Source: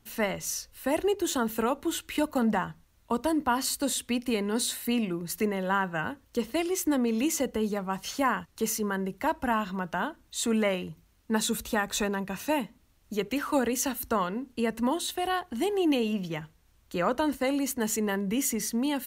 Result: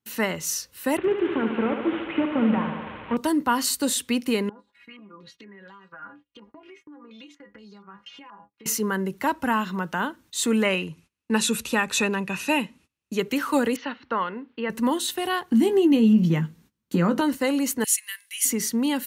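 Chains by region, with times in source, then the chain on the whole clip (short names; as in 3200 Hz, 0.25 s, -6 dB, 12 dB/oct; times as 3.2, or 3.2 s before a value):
0.97–3.17 delta modulation 16 kbps, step -38.5 dBFS + thinning echo 73 ms, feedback 81%, high-pass 170 Hz, level -7 dB
4.49–8.66 metallic resonator 60 Hz, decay 0.44 s, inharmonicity 0.03 + compressor 16:1, threshold -48 dBFS + stepped low-pass 4.2 Hz 900–4600 Hz
10.65–13.19 brick-wall FIR low-pass 12000 Hz + bell 2600 Hz +10.5 dB 0.24 oct
13.76–14.7 Gaussian blur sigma 3.4 samples + tilt +3.5 dB/oct
15.51–17.21 bell 200 Hz +15 dB 1.3 oct + compressor 3:1, threshold -22 dBFS + doubler 18 ms -9 dB
17.84–18.45 inverse Chebyshev band-stop 100–450 Hz, stop band 80 dB + bell 10000 Hz +14 dB 0.32 oct
whole clip: HPF 120 Hz 12 dB/oct; gate -56 dBFS, range -23 dB; bell 680 Hz -8 dB 0.35 oct; gain +5 dB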